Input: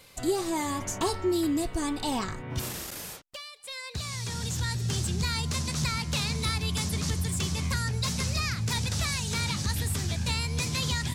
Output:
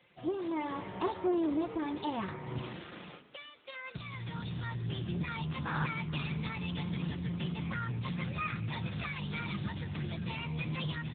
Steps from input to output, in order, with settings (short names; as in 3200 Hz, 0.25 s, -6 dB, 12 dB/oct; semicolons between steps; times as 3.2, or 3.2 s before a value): comb 5.7 ms, depth 51%; AGC gain up to 5 dB; resonator 310 Hz, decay 0.57 s, mix 60%; one-sided clip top -32 dBFS, bottom -19 dBFS; painted sound noise, 5.65–5.86, 780–1800 Hz -34 dBFS; on a send: frequency-shifting echo 0.436 s, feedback 33%, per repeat +92 Hz, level -17 dB; on the sum: gain -1 dB; AMR-NB 7.95 kbps 8000 Hz